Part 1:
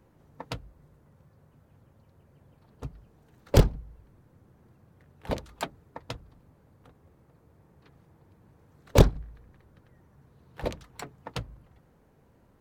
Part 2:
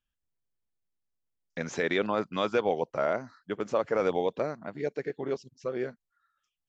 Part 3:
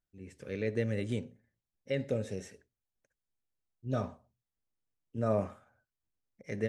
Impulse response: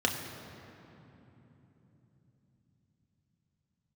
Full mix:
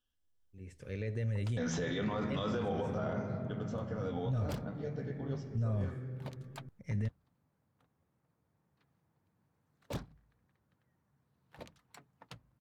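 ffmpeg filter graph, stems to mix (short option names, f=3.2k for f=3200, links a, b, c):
-filter_complex "[0:a]highpass=340,adelay=950,volume=-14dB[a];[1:a]alimiter=limit=-21.5dB:level=0:latency=1:release=41,flanger=delay=9.4:depth=7.1:regen=42:speed=0.33:shape=sinusoidal,afade=t=out:st=2.66:d=0.77:silence=0.354813,asplit=3[b][c][d];[c]volume=-6.5dB[e];[2:a]adelay=400,volume=-3dB[f];[d]apad=whole_len=312531[g];[f][g]sidechaincompress=threshold=-44dB:ratio=8:attack=16:release=195[h];[3:a]atrim=start_sample=2205[i];[e][i]afir=irnorm=-1:irlink=0[j];[a][b][h][j]amix=inputs=4:normalize=0,asubboost=boost=11.5:cutoff=120,alimiter=level_in=3dB:limit=-24dB:level=0:latency=1:release=14,volume=-3dB"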